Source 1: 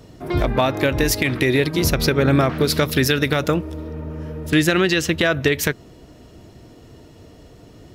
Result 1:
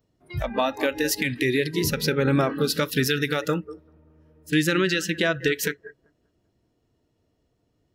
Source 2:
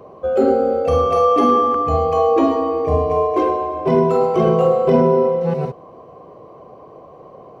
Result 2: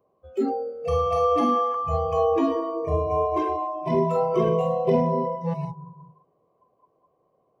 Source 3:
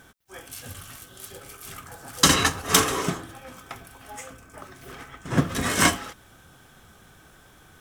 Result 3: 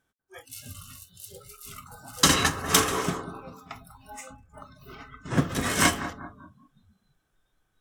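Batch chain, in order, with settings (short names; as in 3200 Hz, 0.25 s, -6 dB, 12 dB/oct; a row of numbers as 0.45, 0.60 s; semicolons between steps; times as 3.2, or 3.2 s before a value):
analogue delay 0.194 s, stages 2048, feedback 46%, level -11 dB; spectral noise reduction 22 dB; match loudness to -24 LUFS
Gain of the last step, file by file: -4.5, -6.0, -2.0 dB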